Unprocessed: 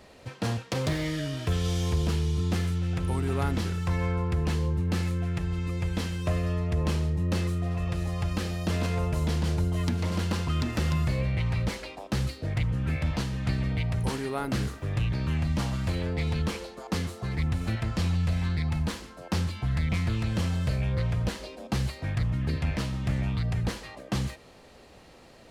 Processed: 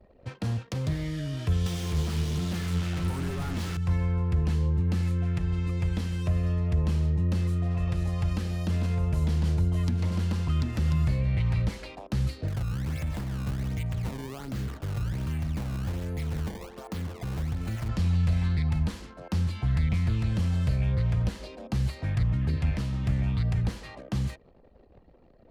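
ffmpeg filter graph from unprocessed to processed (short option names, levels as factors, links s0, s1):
-filter_complex "[0:a]asettb=1/sr,asplit=3[s0][s1][s2];[s0]atrim=end=1.664[s3];[s1]atrim=start=1.66:end=3.77,asetpts=PTS-STARTPTS,afade=t=in:d=0.004:c=qsin,afade=t=out:st=2.106:d=0.004:c=qsin,asplit=2[s4][s5];[s5]highpass=f=720:p=1,volume=79.4,asoftclip=type=tanh:threshold=0.158[s6];[s4][s6]amix=inputs=2:normalize=0,lowpass=f=7500:p=1,volume=0.501,flanger=delay=5.1:depth=9:regen=68:speed=1.2:shape=sinusoidal[s7];[s2]atrim=start=3.766[s8];[s3][s7]acrossfade=d=0.004:c1=hsin:c2=qsin[s9];[s9][s8]acrossfade=d=0.004:c1=qsin:c2=hsin,asettb=1/sr,asplit=3[s10][s11][s12];[s10]atrim=end=12.484[s13];[s11]atrim=start=12.48:end=17.89,asetpts=PTS-STARTPTS,afade=t=in:d=0.004:c=qsin,afade=t=out:st=5.406:d=0.004:c=qsin,acrusher=samples=19:mix=1:aa=0.000001:lfo=1:lforange=30.4:lforate=1.3,acompressor=threshold=0.0251:ratio=2:attack=3.2:release=140:knee=1:detection=peak[s14];[s12]atrim=start=17.886[s15];[s13][s14]acrossfade=d=0.004:c1=hsin:c2=qsin[s16];[s16][s15]acrossfade=d=0.004:c1=qsin:c2=hsin,anlmdn=0.01,acrossover=split=220[s17][s18];[s18]acompressor=threshold=0.0126:ratio=6[s19];[s17][s19]amix=inputs=2:normalize=0,lowshelf=f=140:g=3.5"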